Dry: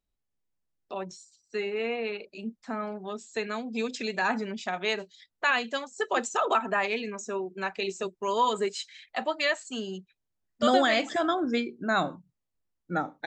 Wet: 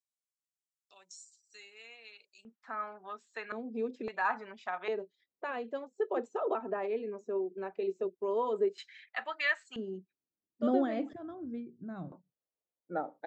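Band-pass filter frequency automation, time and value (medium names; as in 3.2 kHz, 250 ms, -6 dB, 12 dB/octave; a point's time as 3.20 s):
band-pass filter, Q 1.8
7.6 kHz
from 2.45 s 1.3 kHz
from 3.52 s 370 Hz
from 4.08 s 1.1 kHz
from 4.88 s 410 Hz
from 8.78 s 1.7 kHz
from 9.76 s 310 Hz
from 11.13 s 110 Hz
from 12.12 s 550 Hz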